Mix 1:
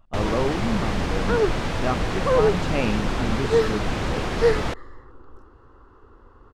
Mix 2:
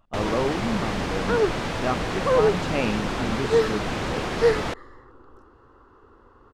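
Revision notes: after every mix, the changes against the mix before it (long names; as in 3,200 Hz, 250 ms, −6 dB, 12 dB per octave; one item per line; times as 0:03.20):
master: add low-shelf EQ 88 Hz −9.5 dB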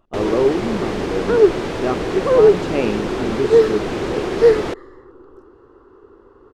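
master: add parametric band 380 Hz +12.5 dB 0.76 octaves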